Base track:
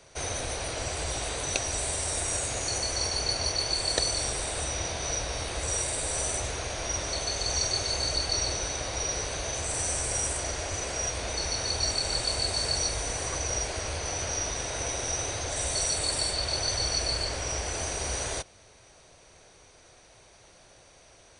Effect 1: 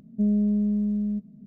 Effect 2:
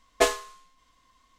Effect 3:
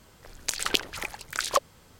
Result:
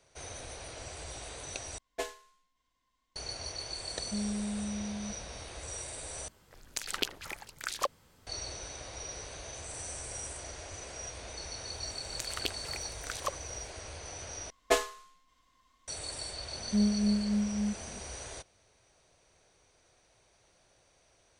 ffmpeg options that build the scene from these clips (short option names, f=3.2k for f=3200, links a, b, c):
-filter_complex "[2:a]asplit=2[a][b];[1:a]asplit=2[c][d];[3:a]asplit=2[e][f];[0:a]volume=-11.5dB[g];[a]asuperstop=centerf=1200:order=4:qfactor=5.4[h];[d]tremolo=f=3.6:d=0.56[i];[g]asplit=4[j][k][l][m];[j]atrim=end=1.784[n];[h]atrim=end=1.38,asetpts=PTS-STARTPTS,volume=-15dB[o];[k]atrim=start=3.156:end=6.284[p];[e]atrim=end=1.99,asetpts=PTS-STARTPTS,volume=-7.5dB[q];[l]atrim=start=8.266:end=14.504[r];[b]atrim=end=1.38,asetpts=PTS-STARTPTS,volume=-5dB[s];[m]atrim=start=15.876[t];[c]atrim=end=1.46,asetpts=PTS-STARTPTS,volume=-12.5dB,afade=t=in:d=0.004:c=hsin,afade=t=out:st=1.456:d=0.004:c=hsin,adelay=173313S[u];[f]atrim=end=1.99,asetpts=PTS-STARTPTS,volume=-11dB,afade=t=in:d=0.004:c=hsin,afade=t=out:st=1.986:d=0.004:c=hsin,adelay=11710[v];[i]atrim=end=1.46,asetpts=PTS-STARTPTS,volume=-3dB,afade=t=in:d=0.004:c=hsin,afade=t=out:st=1.456:d=0.004:c=hsin,adelay=16540[w];[n][o]acrossfade=d=0.004:c1=hsin:c2=hsin[x];[x][p]acrossfade=d=0.004:c1=hsin:c2=hsin[y];[y][q]acrossfade=d=0.004:c1=hsin:c2=hsin[z];[z][r]acrossfade=d=0.004:c1=hsin:c2=hsin[aa];[aa][s]acrossfade=d=0.004:c1=hsin:c2=hsin[ab];[ab][t]acrossfade=d=0.004:c1=hsin:c2=hsin[ac];[ac][u][v][w]amix=inputs=4:normalize=0"